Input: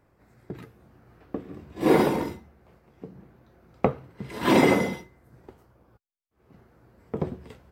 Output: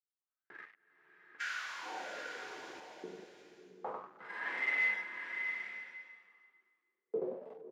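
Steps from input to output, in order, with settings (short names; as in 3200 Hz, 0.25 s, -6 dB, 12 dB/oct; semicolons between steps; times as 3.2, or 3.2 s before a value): high shelf 5300 Hz -7 dB; notch 1400 Hz, Q 16; on a send: feedback echo 97 ms, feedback 17%, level -12 dB; on the sum: painted sound noise, 1.4–2.8, 1400–7400 Hz -13 dBFS; reverse; compressor 16:1, threshold -24 dBFS, peak gain reduction 16 dB; reverse; harmonic-percussive split percussive -15 dB; HPF 180 Hz 24 dB/oct; expander -56 dBFS; low shelf 430 Hz -5 dB; sample leveller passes 5; wah 0.26 Hz 350–2000 Hz, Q 5.8; bloom reverb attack 0.83 s, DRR 5.5 dB; gain -2 dB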